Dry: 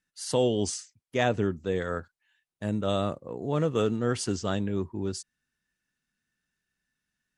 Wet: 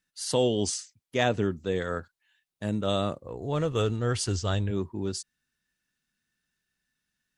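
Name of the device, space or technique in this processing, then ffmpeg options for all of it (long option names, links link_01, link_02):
presence and air boost: -filter_complex "[0:a]asplit=3[link_01][link_02][link_03];[link_01]afade=type=out:start_time=3.22:duration=0.02[link_04];[link_02]asubboost=boost=11.5:cutoff=64,afade=type=in:start_time=3.22:duration=0.02,afade=type=out:start_time=4.7:duration=0.02[link_05];[link_03]afade=type=in:start_time=4.7:duration=0.02[link_06];[link_04][link_05][link_06]amix=inputs=3:normalize=0,equalizer=frequency=3900:width_type=o:width=0.99:gain=3.5,highshelf=frequency=9700:gain=4.5"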